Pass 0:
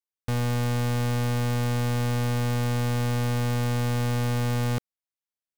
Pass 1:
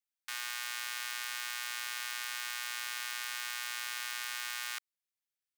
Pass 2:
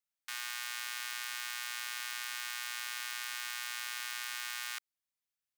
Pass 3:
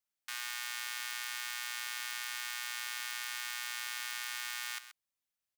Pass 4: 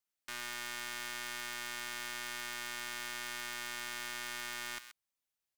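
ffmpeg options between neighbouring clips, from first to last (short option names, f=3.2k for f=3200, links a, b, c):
-af "highpass=f=1.4k:w=0.5412,highpass=f=1.4k:w=1.3066"
-af "equalizer=f=410:w=2.7:g=-13.5,volume=-1dB"
-af "aecho=1:1:130:0.237"
-af "aeval=exprs='(tanh(31.6*val(0)+0.55)-tanh(0.55))/31.6':c=same,volume=2dB"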